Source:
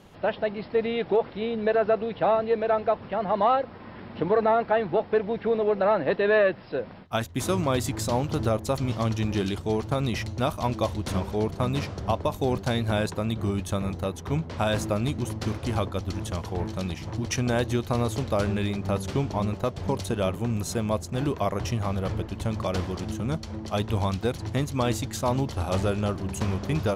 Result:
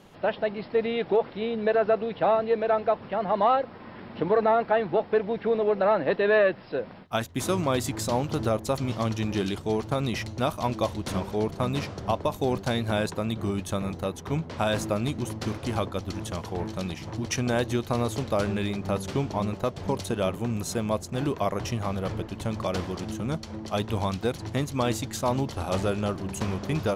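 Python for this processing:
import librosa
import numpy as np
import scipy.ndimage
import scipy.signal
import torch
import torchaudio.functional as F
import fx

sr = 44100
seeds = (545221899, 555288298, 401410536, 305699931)

y = fx.peak_eq(x, sr, hz=62.0, db=-8.0, octaves=1.3)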